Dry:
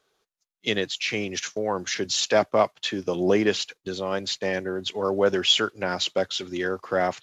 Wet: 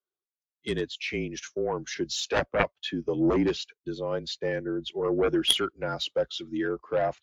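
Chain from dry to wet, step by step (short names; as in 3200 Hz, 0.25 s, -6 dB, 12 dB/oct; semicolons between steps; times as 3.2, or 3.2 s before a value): frequency shift -36 Hz; added harmonics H 3 -6 dB, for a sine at -6 dBFS; spectral expander 1.5:1; gain +2 dB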